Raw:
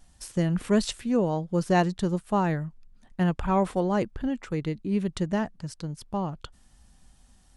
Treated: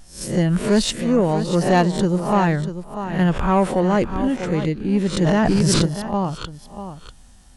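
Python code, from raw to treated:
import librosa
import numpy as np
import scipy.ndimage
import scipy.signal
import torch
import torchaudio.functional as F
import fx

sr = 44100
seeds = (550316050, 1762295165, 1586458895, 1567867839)

y = fx.spec_swells(x, sr, rise_s=0.41)
y = y + 10.0 ** (-11.5 / 20.0) * np.pad(y, (int(643 * sr / 1000.0), 0))[:len(y)]
y = 10.0 ** (-16.0 / 20.0) * np.tanh(y / 10.0 ** (-16.0 / 20.0))
y = fx.env_flatten(y, sr, amount_pct=100, at=(5.22, 5.86))
y = y * 10.0 ** (7.5 / 20.0)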